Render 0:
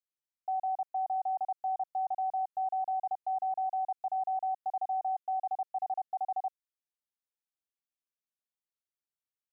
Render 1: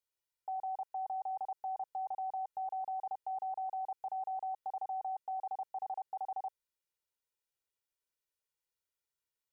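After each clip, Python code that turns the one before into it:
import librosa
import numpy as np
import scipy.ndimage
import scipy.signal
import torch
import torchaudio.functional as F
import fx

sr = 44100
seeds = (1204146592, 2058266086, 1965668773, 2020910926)

y = x + 0.82 * np.pad(x, (int(2.1 * sr / 1000.0), 0))[:len(x)]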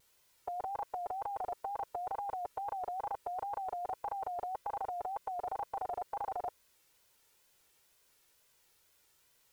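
y = fx.wow_flutter(x, sr, seeds[0], rate_hz=2.1, depth_cents=120.0)
y = fx.spectral_comp(y, sr, ratio=2.0)
y = y * 10.0 ** (6.5 / 20.0)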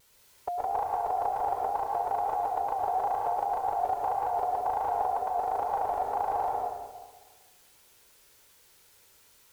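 y = fx.echo_wet_lowpass(x, sr, ms=215, feedback_pct=34, hz=620.0, wet_db=-9.0)
y = fx.rev_plate(y, sr, seeds[1], rt60_s=1.2, hf_ratio=0.9, predelay_ms=95, drr_db=-1.0)
y = y * 10.0 ** (6.5 / 20.0)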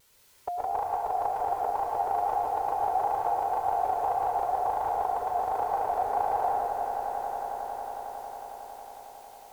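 y = fx.echo_swell(x, sr, ms=91, loudest=8, wet_db=-13)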